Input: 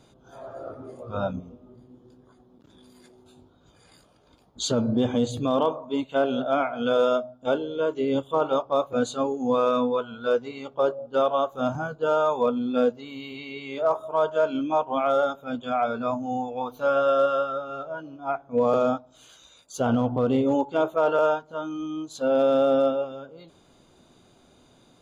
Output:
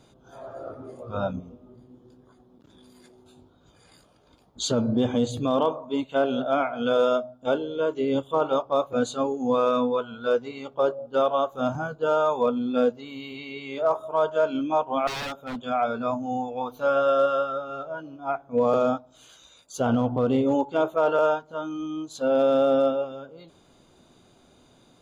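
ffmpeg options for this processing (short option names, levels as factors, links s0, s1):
-filter_complex "[0:a]asettb=1/sr,asplit=3[s0][s1][s2];[s0]atrim=end=15.074[s3];[s1]atrim=start=15.07:end=15.64,asetpts=PTS-STARTPTS,afade=t=in:d=0.004:c=qsin,afade=t=out:st=0.566:d=0.004:c=qsin,aeval=exprs='0.0447*(abs(mod(val(0)/0.0447+3,4)-2)-1)':c=same[s4];[s2]atrim=start=15.636[s5];[s3][s4]acrossfade=d=0.004:c1=hsin:c2=qsin[s6];[s6][s5]acrossfade=d=0.004:c1=qsin:c2=hsin"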